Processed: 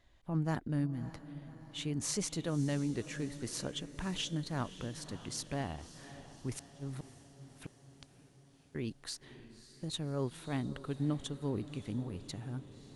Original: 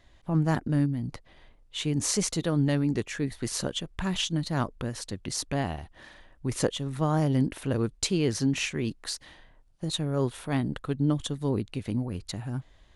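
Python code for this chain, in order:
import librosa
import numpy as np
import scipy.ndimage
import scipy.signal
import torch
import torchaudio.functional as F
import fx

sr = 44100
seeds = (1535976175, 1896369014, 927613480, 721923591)

y = fx.gate_flip(x, sr, shuts_db=-22.0, range_db=-41, at=(6.56, 8.75))
y = fx.echo_diffused(y, sr, ms=575, feedback_pct=60, wet_db=-14.5)
y = y * 10.0 ** (-8.5 / 20.0)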